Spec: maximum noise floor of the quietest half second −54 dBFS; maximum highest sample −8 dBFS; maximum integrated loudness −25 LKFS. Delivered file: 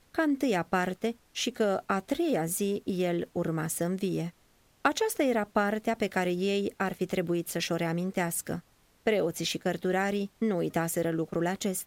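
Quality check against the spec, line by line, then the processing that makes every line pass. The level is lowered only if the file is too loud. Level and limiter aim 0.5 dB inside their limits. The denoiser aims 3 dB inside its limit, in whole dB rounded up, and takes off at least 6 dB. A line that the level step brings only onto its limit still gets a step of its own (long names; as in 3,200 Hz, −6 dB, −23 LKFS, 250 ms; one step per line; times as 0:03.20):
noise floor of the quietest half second −64 dBFS: in spec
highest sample −11.5 dBFS: in spec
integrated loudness −30.0 LKFS: in spec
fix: no processing needed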